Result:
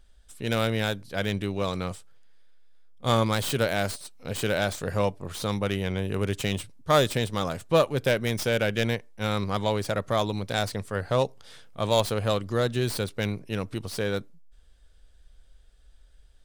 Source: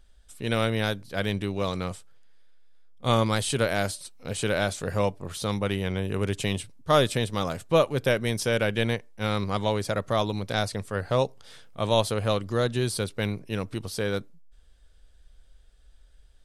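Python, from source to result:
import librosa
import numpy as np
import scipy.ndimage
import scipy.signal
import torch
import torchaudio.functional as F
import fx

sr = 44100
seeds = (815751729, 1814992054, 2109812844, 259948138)

y = fx.tracing_dist(x, sr, depth_ms=0.083)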